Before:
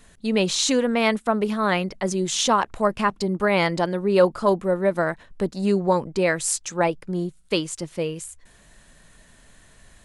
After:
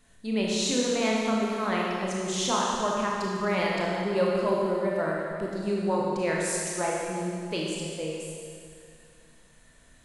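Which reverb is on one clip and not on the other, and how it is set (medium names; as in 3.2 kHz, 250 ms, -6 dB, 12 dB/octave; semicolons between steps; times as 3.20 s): Schroeder reverb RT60 2.3 s, combs from 25 ms, DRR -3.5 dB; trim -10 dB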